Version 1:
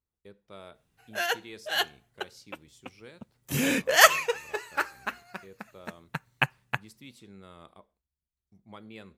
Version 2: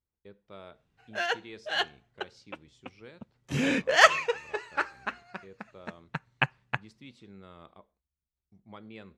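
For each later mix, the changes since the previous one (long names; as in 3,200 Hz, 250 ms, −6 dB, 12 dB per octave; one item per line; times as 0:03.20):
master: add high-frequency loss of the air 110 metres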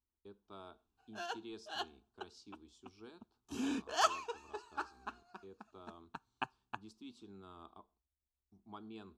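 background −7.5 dB
master: add phaser with its sweep stopped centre 540 Hz, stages 6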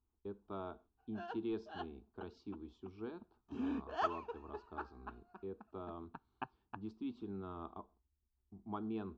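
speech +11.0 dB
master: add head-to-tape spacing loss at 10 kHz 42 dB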